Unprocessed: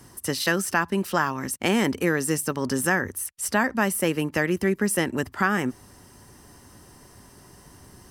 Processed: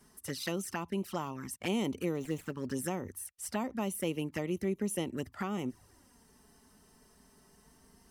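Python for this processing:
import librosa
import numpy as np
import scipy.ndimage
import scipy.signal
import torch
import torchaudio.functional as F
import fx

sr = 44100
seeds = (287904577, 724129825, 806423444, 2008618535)

y = fx.median_filter(x, sr, points=9, at=(2.15, 2.71))
y = fx.env_flanger(y, sr, rest_ms=5.3, full_db=-20.5)
y = F.gain(torch.from_numpy(y), -9.0).numpy()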